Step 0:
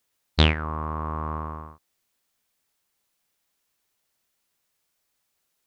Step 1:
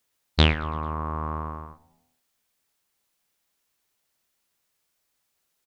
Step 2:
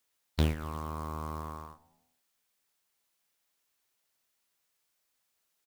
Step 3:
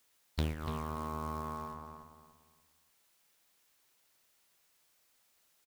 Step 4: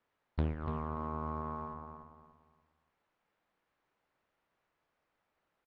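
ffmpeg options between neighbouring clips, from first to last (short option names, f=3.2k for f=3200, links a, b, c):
-filter_complex "[0:a]asplit=5[a][b][c][d][e];[b]adelay=111,afreqshift=-82,volume=-22.5dB[f];[c]adelay=222,afreqshift=-164,volume=-27.2dB[g];[d]adelay=333,afreqshift=-246,volume=-32dB[h];[e]adelay=444,afreqshift=-328,volume=-36.7dB[i];[a][f][g][h][i]amix=inputs=5:normalize=0"
-filter_complex "[0:a]lowshelf=f=360:g=-5,acrossover=split=500[a][b];[b]acompressor=threshold=-35dB:ratio=5[c];[a][c]amix=inputs=2:normalize=0,acrusher=bits=4:mode=log:mix=0:aa=0.000001,volume=-3dB"
-filter_complex "[0:a]acompressor=threshold=-47dB:ratio=2,asplit=2[a][b];[b]adelay=291,lowpass=f=3.6k:p=1,volume=-6.5dB,asplit=2[c][d];[d]adelay=291,lowpass=f=3.6k:p=1,volume=0.3,asplit=2[e][f];[f]adelay=291,lowpass=f=3.6k:p=1,volume=0.3,asplit=2[g][h];[h]adelay=291,lowpass=f=3.6k:p=1,volume=0.3[i];[c][e][g][i]amix=inputs=4:normalize=0[j];[a][j]amix=inputs=2:normalize=0,volume=6.5dB"
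-af "lowpass=1.5k,volume=1dB"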